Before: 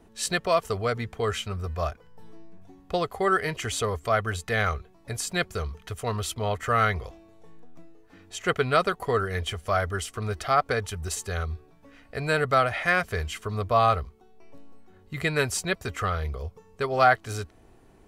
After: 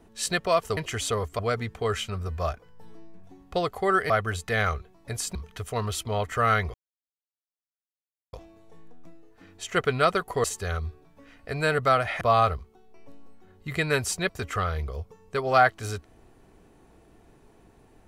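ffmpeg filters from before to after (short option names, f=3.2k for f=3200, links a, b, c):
-filter_complex "[0:a]asplit=8[a][b][c][d][e][f][g][h];[a]atrim=end=0.772[i];[b]atrim=start=3.478:end=4.102[j];[c]atrim=start=0.768:end=3.482[k];[d]atrim=start=4.098:end=5.352[l];[e]atrim=start=5.658:end=7.05,asetpts=PTS-STARTPTS,afade=t=out:st=1.388:d=0.004:c=hsin,apad=pad_dur=1.59[m];[f]atrim=start=7.05:end=9.162,asetpts=PTS-STARTPTS,afade=t=in:d=0.004:c=hsin[n];[g]atrim=start=11.098:end=12.872[o];[h]atrim=start=13.668[p];[i][j]acrossfade=d=0.004:c1=hsin:c2=hsin[q];[q][k]acrossfade=d=0.004:c1=hsin:c2=hsin[r];[r][l]acrossfade=d=0.004:c1=hsin:c2=hsin[s];[m][n]concat=n=2:v=0:a=1[t];[s][t]acrossfade=d=0.004:c1=hsin:c2=hsin[u];[u][o]acrossfade=d=0.004:c1=hsin:c2=hsin[v];[v][p]acrossfade=d=0.004:c1=hsin:c2=hsin"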